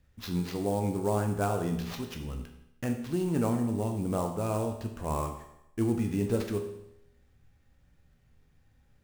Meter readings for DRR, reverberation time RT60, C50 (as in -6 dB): 3.5 dB, 0.85 s, 7.5 dB